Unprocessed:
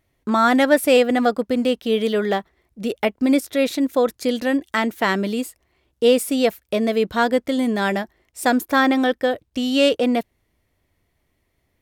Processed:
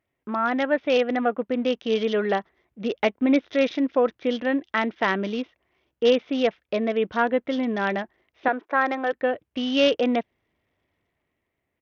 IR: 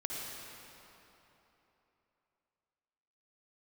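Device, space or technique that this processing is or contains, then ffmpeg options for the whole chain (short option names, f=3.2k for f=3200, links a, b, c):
Bluetooth headset: -filter_complex "[0:a]asettb=1/sr,asplit=3[a][b][c];[a]atrim=end=8.484[d];[b]atrim=start=8.48:end=9.13,asetpts=PTS-STARTPTS,afade=t=in:d=0.004:c=qsin,afade=t=out:st=0.646:d=0.004:c=qsin,acrossover=split=340 2500:gain=0.1 1 0.224[e][f][g];[e][f][g]amix=inputs=3:normalize=0[h];[c]atrim=start=9.126[i];[d][h]acrossfade=d=0.004:c1=hsin:c2=qsin[j];[j][i]acrossfade=d=0.004:c1=qsin:c2=hsin,highpass=f=190:p=1,dynaudnorm=f=290:g=7:m=16dB,aresample=8000,aresample=44100,volume=-7.5dB" -ar 48000 -c:a sbc -b:a 64k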